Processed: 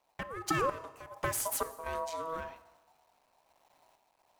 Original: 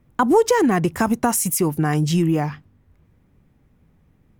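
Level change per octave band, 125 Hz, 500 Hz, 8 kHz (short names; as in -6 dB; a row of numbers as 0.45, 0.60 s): -23.5, -17.0, -13.5 dB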